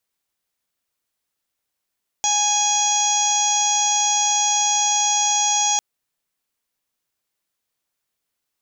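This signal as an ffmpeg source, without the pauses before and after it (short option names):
-f lavfi -i "aevalsrc='0.0794*sin(2*PI*829*t)+0.00944*sin(2*PI*1658*t)+0.0251*sin(2*PI*2487*t)+0.0531*sin(2*PI*3316*t)+0.0168*sin(2*PI*4145*t)+0.0224*sin(2*PI*4974*t)+0.0562*sin(2*PI*5803*t)+0.106*sin(2*PI*6632*t)+0.0133*sin(2*PI*7461*t)':d=3.55:s=44100"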